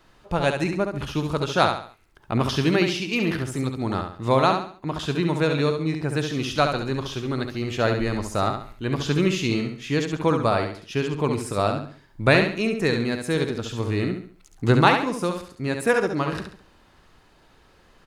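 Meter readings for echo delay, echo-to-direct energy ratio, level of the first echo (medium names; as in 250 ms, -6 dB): 69 ms, -5.5 dB, -6.0 dB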